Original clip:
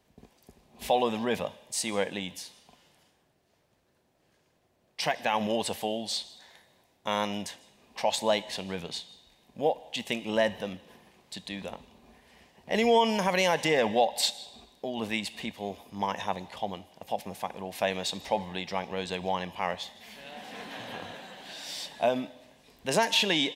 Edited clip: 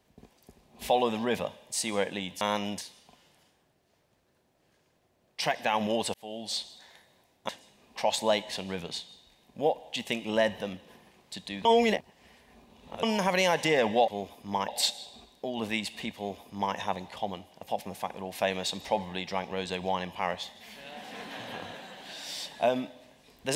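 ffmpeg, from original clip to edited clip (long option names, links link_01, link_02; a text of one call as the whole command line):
ffmpeg -i in.wav -filter_complex "[0:a]asplit=9[link_01][link_02][link_03][link_04][link_05][link_06][link_07][link_08][link_09];[link_01]atrim=end=2.412[link_10];[link_02]atrim=start=7.088:end=7.492[link_11];[link_03]atrim=start=2.408:end=5.74,asetpts=PTS-STARTPTS,afade=type=out:start_time=3.328:duration=0.004:curve=hsin[link_12];[link_04]atrim=start=5.74:end=7.092,asetpts=PTS-STARTPTS,afade=type=in:duration=0.44[link_13];[link_05]atrim=start=7.488:end=11.652[link_14];[link_06]atrim=start=11.648:end=13.032,asetpts=PTS-STARTPTS,areverse[link_15];[link_07]atrim=start=13.028:end=14.082[link_16];[link_08]atrim=start=15.558:end=16.162[link_17];[link_09]atrim=start=14.078[link_18];[link_10][link_11]acrossfade=duration=0.004:curve1=hsin:curve2=hsin[link_19];[link_12][link_13]concat=n=2:v=0:a=1[link_20];[link_19][link_20]acrossfade=duration=0.004:curve1=hsin:curve2=hsin[link_21];[link_21][link_14]acrossfade=duration=0.004:curve1=hsin:curve2=hsin[link_22];[link_22][link_15]acrossfade=duration=0.004:curve1=hsin:curve2=hsin[link_23];[link_23][link_16]acrossfade=duration=0.004:curve1=hsin:curve2=hsin[link_24];[link_24][link_17]acrossfade=duration=0.004:curve1=hsin:curve2=hsin[link_25];[link_25][link_18]acrossfade=duration=0.004:curve1=hsin:curve2=hsin" out.wav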